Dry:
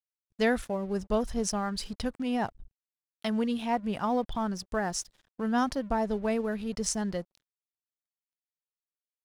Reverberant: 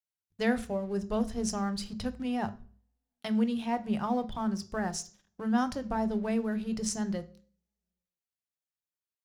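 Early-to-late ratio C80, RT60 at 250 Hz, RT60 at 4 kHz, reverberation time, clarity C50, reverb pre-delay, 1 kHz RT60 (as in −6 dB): 22.5 dB, 0.50 s, 0.40 s, 0.45 s, 18.5 dB, 3 ms, 0.40 s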